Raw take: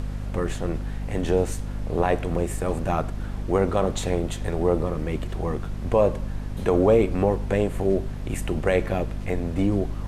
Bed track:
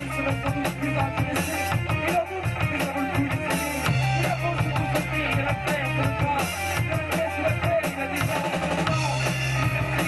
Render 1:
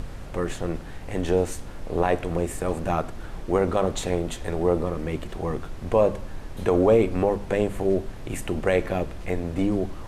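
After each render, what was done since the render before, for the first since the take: notches 50/100/150/200/250 Hz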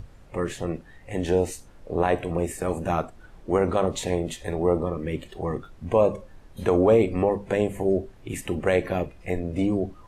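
noise print and reduce 13 dB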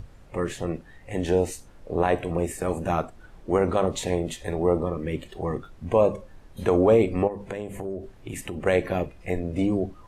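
7.27–8.66 compressor 4:1, threshold -29 dBFS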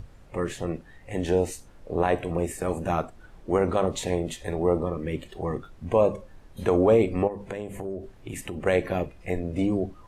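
gain -1 dB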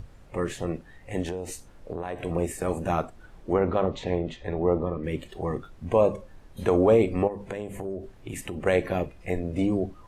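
1.22–2.22 compressor 12:1, threshold -27 dBFS; 3.53–5.04 air absorption 200 m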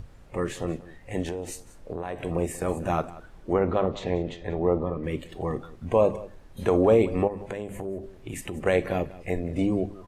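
echo 0.185 s -18.5 dB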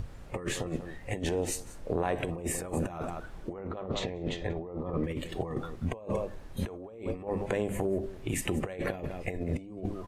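limiter -16 dBFS, peak gain reduction 6.5 dB; negative-ratio compressor -32 dBFS, ratio -0.5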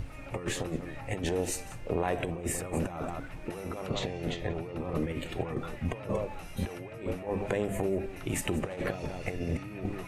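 add bed track -21.5 dB

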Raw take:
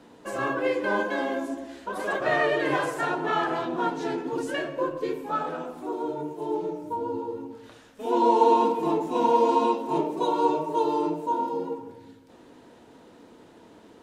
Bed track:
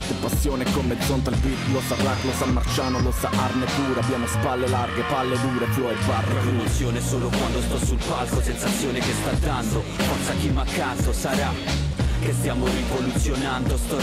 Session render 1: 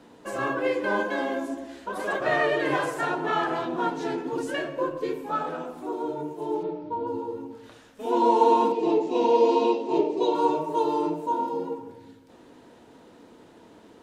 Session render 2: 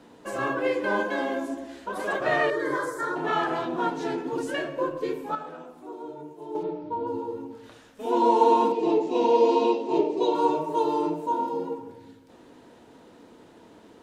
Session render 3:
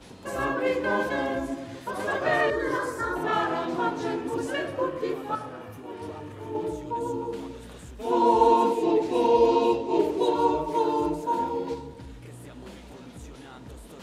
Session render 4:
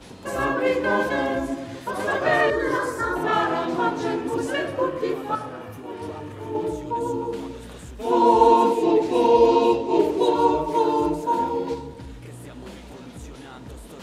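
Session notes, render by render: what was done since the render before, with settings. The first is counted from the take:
6.63–7.07 steep low-pass 4600 Hz; 8.72–10.35 speaker cabinet 220–6900 Hz, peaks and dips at 400 Hz +9 dB, 1100 Hz -7 dB, 1500 Hz -9 dB, 2700 Hz +4 dB, 4500 Hz +5 dB
2.5–3.16 fixed phaser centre 730 Hz, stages 6; 5.35–6.55 gain -8 dB
add bed track -21.5 dB
gain +4 dB

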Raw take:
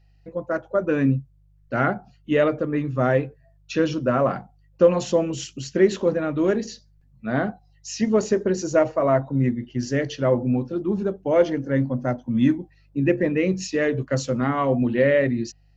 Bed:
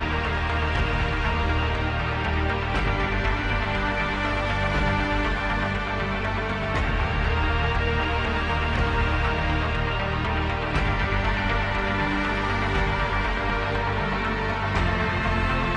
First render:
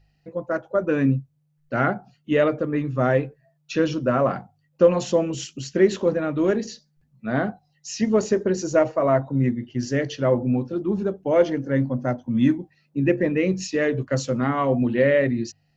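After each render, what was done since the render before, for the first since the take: de-hum 50 Hz, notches 2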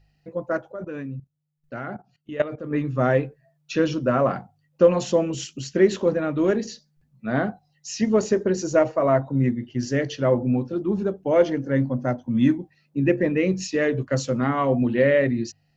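0.72–2.71 level quantiser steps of 16 dB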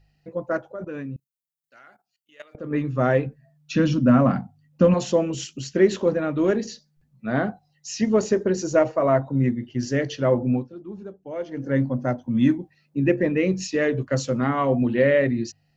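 1.16–2.55 differentiator; 3.26–4.94 resonant low shelf 310 Hz +6 dB, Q 3; 10.55–11.64 dip -13 dB, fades 0.13 s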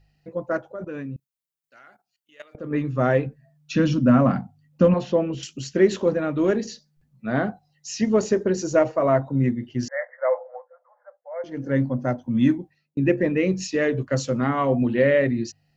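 4.88–5.43 air absorption 220 m; 9.88–11.44 brick-wall FIR band-pass 490–2200 Hz; 12.57–12.97 fade out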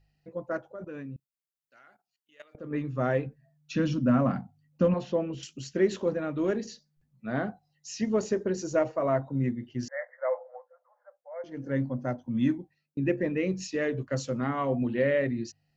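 gain -7 dB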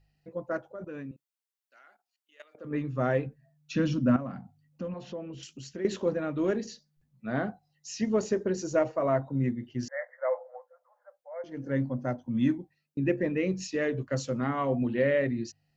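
1.11–2.65 Bessel high-pass 430 Hz; 4.16–5.85 compressor 2:1, threshold -42 dBFS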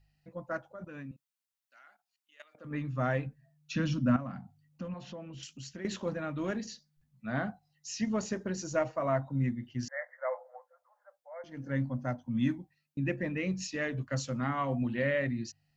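bell 410 Hz -11.5 dB 0.9 oct

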